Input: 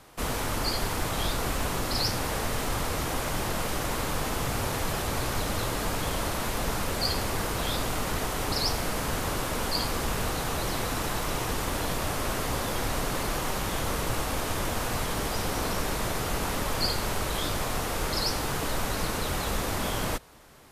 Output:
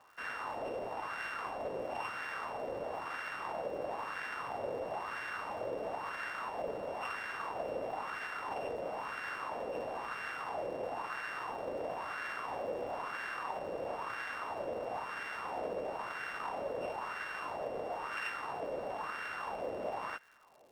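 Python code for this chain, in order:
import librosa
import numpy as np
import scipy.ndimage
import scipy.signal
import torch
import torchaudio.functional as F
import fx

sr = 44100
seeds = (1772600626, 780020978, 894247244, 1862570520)

y = np.r_[np.sort(x[:len(x) // 16 * 16].reshape(-1, 16), axis=1).ravel(), x[len(x) // 16 * 16:]]
y = fx.wah_lfo(y, sr, hz=1.0, low_hz=520.0, high_hz=1600.0, q=3.6)
y = fx.dmg_crackle(y, sr, seeds[0], per_s=220.0, level_db=-57.0)
y = y * librosa.db_to_amplitude(2.5)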